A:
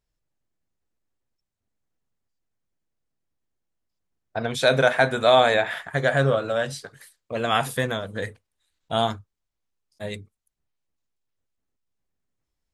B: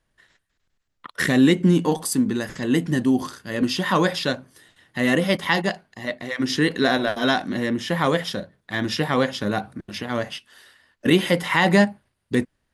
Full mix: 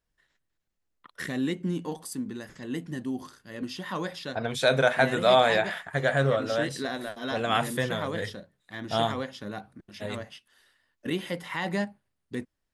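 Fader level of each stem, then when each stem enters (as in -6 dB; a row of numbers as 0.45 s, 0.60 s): -3.5 dB, -13.0 dB; 0.00 s, 0.00 s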